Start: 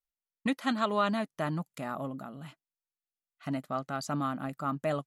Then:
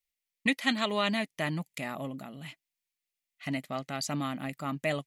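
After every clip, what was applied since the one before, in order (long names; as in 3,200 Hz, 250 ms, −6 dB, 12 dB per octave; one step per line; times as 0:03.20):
high shelf with overshoot 1,700 Hz +6 dB, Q 3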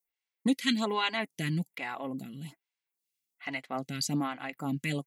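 notch comb filter 610 Hz
phaser with staggered stages 1.2 Hz
level +4.5 dB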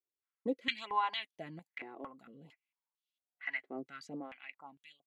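fade-out on the ending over 1.35 s
band-pass on a step sequencer 4.4 Hz 360–3,300 Hz
level +4 dB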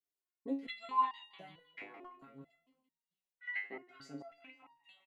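repeating echo 169 ms, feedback 46%, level −14 dB
step-sequenced resonator 4.5 Hz 100–930 Hz
level +8 dB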